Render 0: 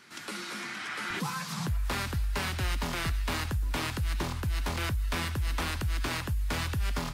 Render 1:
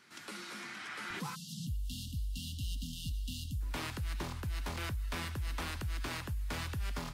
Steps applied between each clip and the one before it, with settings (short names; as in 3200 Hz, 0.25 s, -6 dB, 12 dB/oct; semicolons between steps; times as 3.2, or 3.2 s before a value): spectral delete 1.35–3.6, 280–2700 Hz; gain -7 dB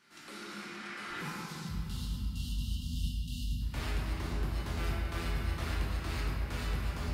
shoebox room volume 130 m³, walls hard, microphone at 0.81 m; gain -5.5 dB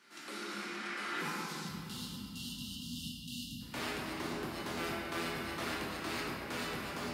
Chebyshev high-pass 270 Hz, order 2; gain +3.5 dB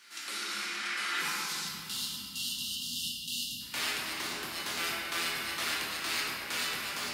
tilt shelf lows -9.5 dB, about 1100 Hz; gain +2 dB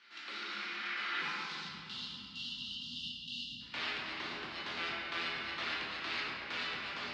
LPF 4100 Hz 24 dB/oct; gain -3.5 dB